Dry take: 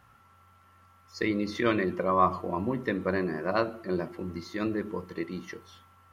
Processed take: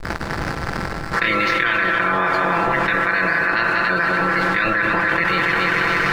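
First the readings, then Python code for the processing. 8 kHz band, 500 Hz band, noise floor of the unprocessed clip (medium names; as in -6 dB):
no reading, +6.0 dB, -60 dBFS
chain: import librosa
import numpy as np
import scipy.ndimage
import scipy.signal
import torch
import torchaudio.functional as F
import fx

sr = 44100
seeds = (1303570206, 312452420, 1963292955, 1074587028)

p1 = fx.spec_clip(x, sr, under_db=26)
p2 = scipy.signal.sosfilt(scipy.signal.butter(2, 4300.0, 'lowpass', fs=sr, output='sos'), p1)
p3 = fx.env_lowpass(p2, sr, base_hz=1700.0, full_db=-22.5)
p4 = fx.peak_eq(p3, sr, hz=1600.0, db=13.5, octaves=0.74)
p5 = p4 + 0.92 * np.pad(p4, (int(5.9 * sr / 1000.0), 0))[:len(p4)]
p6 = fx.rider(p5, sr, range_db=10, speed_s=2.0)
p7 = fx.backlash(p6, sr, play_db=-43.0)
p8 = p7 + fx.echo_heads(p7, sr, ms=93, heads='second and third', feedback_pct=43, wet_db=-11.0, dry=0)
p9 = fx.env_flatten(p8, sr, amount_pct=100)
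y = p9 * librosa.db_to_amplitude(-5.5)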